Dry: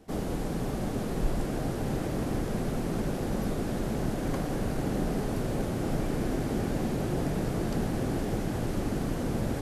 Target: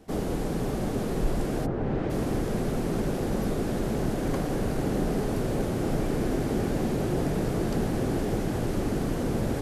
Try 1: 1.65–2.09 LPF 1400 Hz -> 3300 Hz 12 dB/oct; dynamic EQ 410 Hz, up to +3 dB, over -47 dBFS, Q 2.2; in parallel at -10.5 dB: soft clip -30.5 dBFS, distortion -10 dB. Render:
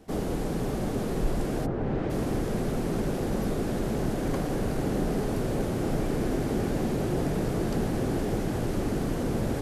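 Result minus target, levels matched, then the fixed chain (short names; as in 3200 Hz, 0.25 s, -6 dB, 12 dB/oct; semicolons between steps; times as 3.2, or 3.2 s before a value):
soft clip: distortion +8 dB
1.65–2.09 LPF 1400 Hz -> 3300 Hz 12 dB/oct; dynamic EQ 410 Hz, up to +3 dB, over -47 dBFS, Q 2.2; in parallel at -10.5 dB: soft clip -23 dBFS, distortion -17 dB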